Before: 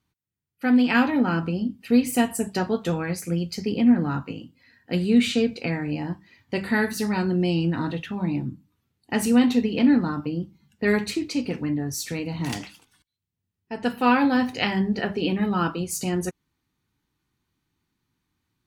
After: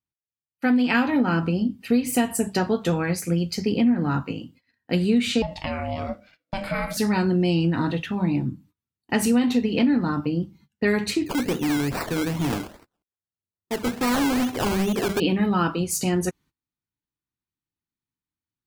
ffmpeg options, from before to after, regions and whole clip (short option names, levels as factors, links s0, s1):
-filter_complex "[0:a]asettb=1/sr,asplit=3[s0][s1][s2];[s0]atrim=end=5.424[s3];[s1]atrim=start=5.42:end=6.97,asetpts=PTS-STARTPTS,afade=t=in:d=0.004:c=qsin,afade=t=out:st=1.546:d=0.004:c=qsin,acompressor=threshold=0.0562:ratio=2.5:attack=3.2:release=140:knee=1:detection=peak,aeval=exprs='val(0)*sin(2*PI*400*n/s)':c=same[s4];[s2]atrim=start=6.966[s5];[s3][s4]acrossfade=d=0.004:c1=hsin:c2=qsin[s6];[s6][s5]acrossfade=d=0.004:c1=qsin:c2=hsin,asettb=1/sr,asplit=3[s7][s8][s9];[s7]atrim=end=11.264[s10];[s8]atrim=start=11.26:end=15.2,asetpts=PTS-STARTPTS,afade=t=in:d=0.004:c=qsin,afade=t=out:st=3.936:d=0.004:c=qsin,equalizer=f=380:t=o:w=0.62:g=7,acrusher=samples=19:mix=1:aa=0.000001:lfo=1:lforange=11.4:lforate=2.4,volume=15,asoftclip=hard,volume=0.0668[s11];[s9]atrim=start=15.196[s12];[s10][s11]acrossfade=d=0.004:c1=hsin:c2=qsin[s13];[s13][s12]acrossfade=d=0.004:c1=qsin:c2=hsin,agate=range=0.0794:threshold=0.00224:ratio=16:detection=peak,acompressor=threshold=0.1:ratio=6,volume=1.5"